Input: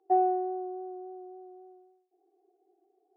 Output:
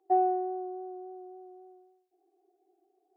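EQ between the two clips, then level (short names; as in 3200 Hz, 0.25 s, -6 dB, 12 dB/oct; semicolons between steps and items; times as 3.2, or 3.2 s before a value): bell 450 Hz -7 dB 0.22 oct; notch 860 Hz, Q 13; 0.0 dB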